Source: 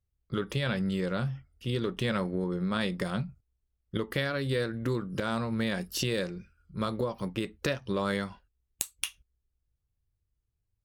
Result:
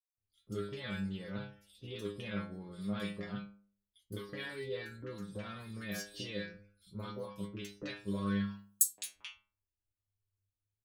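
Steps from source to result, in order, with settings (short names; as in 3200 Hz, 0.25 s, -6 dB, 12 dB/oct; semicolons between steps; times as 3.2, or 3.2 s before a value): 8.26–8.97 tilt +4.5 dB/oct; metallic resonator 100 Hz, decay 0.52 s, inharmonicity 0.002; three bands offset in time highs, lows, mids 0.17/0.21 s, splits 1000/4900 Hz; gain +3.5 dB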